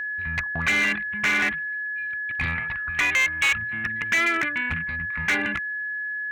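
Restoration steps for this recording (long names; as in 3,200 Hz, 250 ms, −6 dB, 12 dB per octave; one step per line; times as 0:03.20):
clipped peaks rebuilt −17 dBFS
notch filter 1,700 Hz, Q 30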